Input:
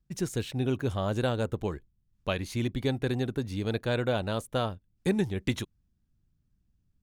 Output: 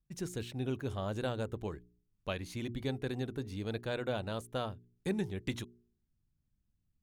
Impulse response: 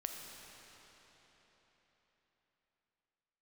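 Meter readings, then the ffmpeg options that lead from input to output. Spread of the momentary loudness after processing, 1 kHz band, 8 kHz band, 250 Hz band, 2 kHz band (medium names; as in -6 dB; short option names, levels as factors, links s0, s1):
6 LU, -7.0 dB, -7.0 dB, -7.5 dB, -7.0 dB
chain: -af "bandreject=f=59.51:t=h:w=4,bandreject=f=119.02:t=h:w=4,bandreject=f=178.53:t=h:w=4,bandreject=f=238.04:t=h:w=4,bandreject=f=297.55:t=h:w=4,bandreject=f=357.06:t=h:w=4,bandreject=f=416.57:t=h:w=4,volume=0.447"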